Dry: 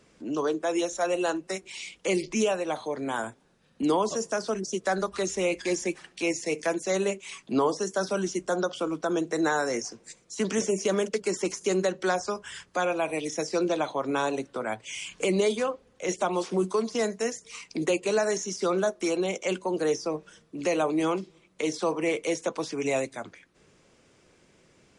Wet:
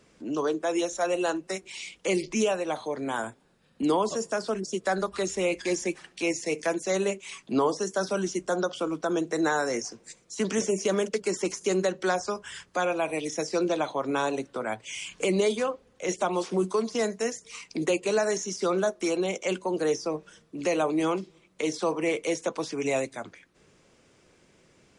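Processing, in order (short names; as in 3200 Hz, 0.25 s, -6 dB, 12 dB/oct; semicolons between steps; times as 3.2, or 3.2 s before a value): 3.25–5.53 notch 6000 Hz, Q 9.9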